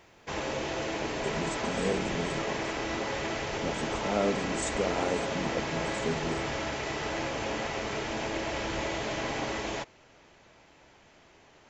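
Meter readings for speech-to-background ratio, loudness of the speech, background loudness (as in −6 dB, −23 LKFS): −1.5 dB, −34.5 LKFS, −33.0 LKFS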